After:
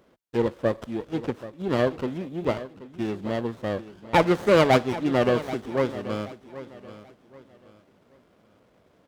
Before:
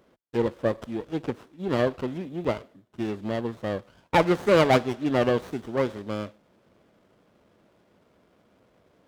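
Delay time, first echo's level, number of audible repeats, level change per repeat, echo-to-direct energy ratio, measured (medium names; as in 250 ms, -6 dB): 781 ms, -15.0 dB, 2, -10.0 dB, -14.5 dB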